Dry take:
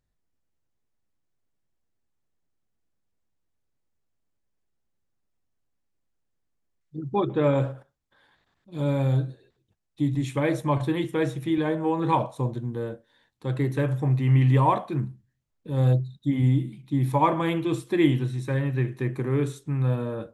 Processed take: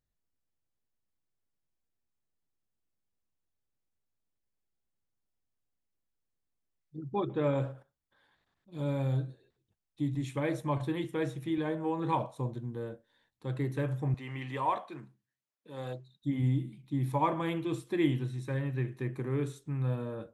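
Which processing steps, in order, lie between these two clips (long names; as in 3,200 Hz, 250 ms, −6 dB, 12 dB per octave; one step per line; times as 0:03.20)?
0:14.14–0:16.23: meter weighting curve A
level −7.5 dB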